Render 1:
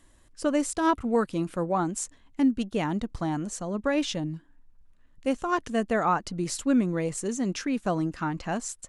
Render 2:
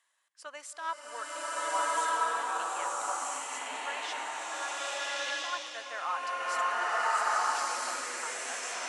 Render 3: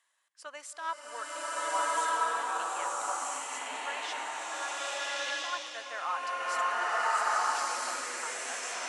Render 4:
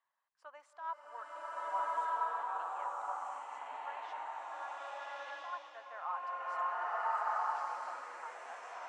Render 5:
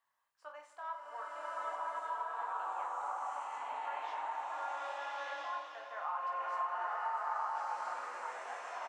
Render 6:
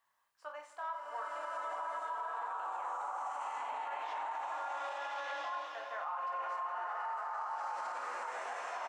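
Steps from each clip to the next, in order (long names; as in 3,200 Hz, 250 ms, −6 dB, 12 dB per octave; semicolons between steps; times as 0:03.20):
Bessel high-pass filter 1,400 Hz, order 4; spectral tilt −2.5 dB per octave; slow-attack reverb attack 1,340 ms, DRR −11 dB; level −3.5 dB
no processing that can be heard
resonant band-pass 880 Hz, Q 1.9; level −3 dB
downward compressor, threshold −38 dBFS, peak gain reduction 8 dB; on a send: reverse bouncing-ball delay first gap 20 ms, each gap 1.5×, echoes 5; on the sum: level +1.5 dB
brickwall limiter −35.5 dBFS, peak gain reduction 9.5 dB; level +4 dB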